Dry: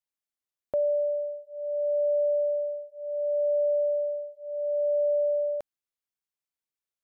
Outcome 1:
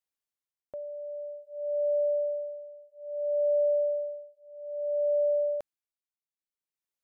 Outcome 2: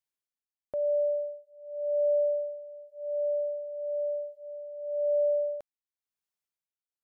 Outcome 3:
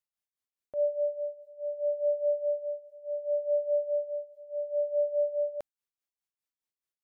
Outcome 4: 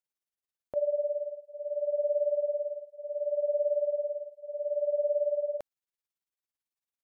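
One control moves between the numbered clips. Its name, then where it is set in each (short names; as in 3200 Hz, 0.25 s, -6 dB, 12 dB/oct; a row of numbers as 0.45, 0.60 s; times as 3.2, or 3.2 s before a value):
tremolo, rate: 0.56, 0.95, 4.8, 18 Hz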